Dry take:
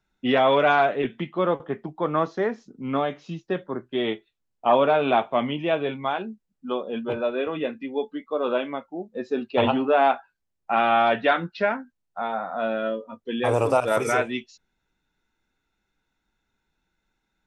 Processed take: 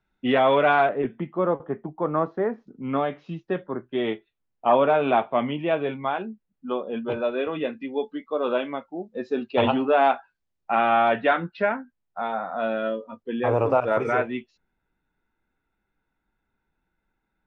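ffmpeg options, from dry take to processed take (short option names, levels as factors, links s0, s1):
-af "asetnsamples=n=441:p=0,asendcmd='0.89 lowpass f 1400;2.67 lowpass f 2800;7.08 lowpass f 5400;10.75 lowpass f 2800;12.2 lowpass f 4700;13.23 lowpass f 2000',lowpass=3300"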